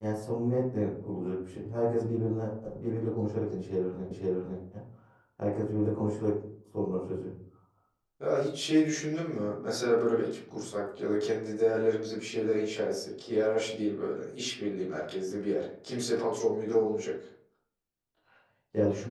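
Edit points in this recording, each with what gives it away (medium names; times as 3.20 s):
4.11 s: repeat of the last 0.51 s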